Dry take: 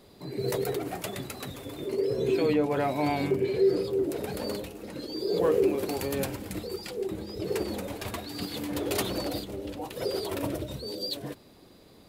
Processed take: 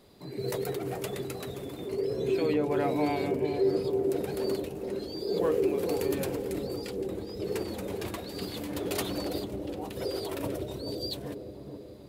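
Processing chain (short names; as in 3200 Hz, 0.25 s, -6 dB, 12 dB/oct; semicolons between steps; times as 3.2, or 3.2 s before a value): dark delay 0.433 s, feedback 57%, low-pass 580 Hz, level -3.5 dB; gain -3 dB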